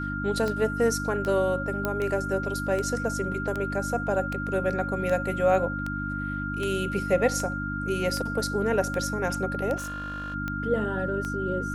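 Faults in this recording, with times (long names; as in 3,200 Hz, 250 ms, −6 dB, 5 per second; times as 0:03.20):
mains hum 50 Hz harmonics 6 −33 dBFS
scratch tick 78 rpm −18 dBFS
whistle 1,400 Hz −32 dBFS
0:01.85: click −13 dBFS
0:09.76–0:10.35: clipping −31.5 dBFS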